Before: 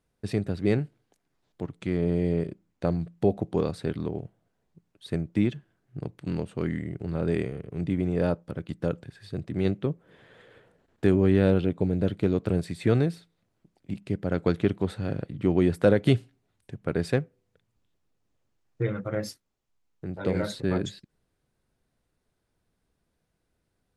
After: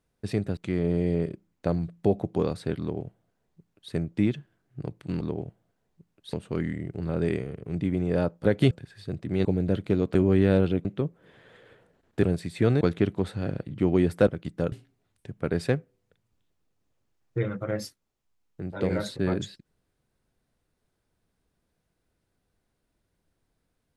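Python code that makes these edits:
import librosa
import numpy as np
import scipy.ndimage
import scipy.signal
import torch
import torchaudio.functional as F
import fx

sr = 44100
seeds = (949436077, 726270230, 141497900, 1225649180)

y = fx.edit(x, sr, fx.cut(start_s=0.57, length_s=1.18),
    fx.duplicate(start_s=3.98, length_s=1.12, to_s=6.39),
    fx.swap(start_s=8.51, length_s=0.45, other_s=15.9, other_length_s=0.26),
    fx.swap(start_s=9.7, length_s=1.38, other_s=11.78, other_length_s=0.7),
    fx.cut(start_s=13.06, length_s=1.38), tone=tone)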